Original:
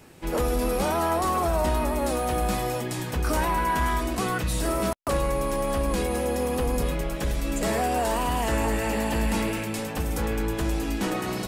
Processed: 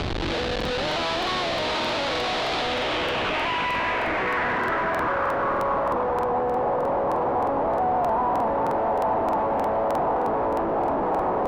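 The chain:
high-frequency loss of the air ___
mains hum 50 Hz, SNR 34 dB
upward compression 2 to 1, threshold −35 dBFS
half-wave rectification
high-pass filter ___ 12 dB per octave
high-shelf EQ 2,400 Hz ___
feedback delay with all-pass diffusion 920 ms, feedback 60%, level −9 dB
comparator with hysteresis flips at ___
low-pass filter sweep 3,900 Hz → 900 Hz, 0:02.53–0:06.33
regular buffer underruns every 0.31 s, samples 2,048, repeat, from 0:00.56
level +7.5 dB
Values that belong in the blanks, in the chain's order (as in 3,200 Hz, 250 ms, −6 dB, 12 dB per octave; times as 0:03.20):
84 metres, 400 Hz, −6 dB, −49 dBFS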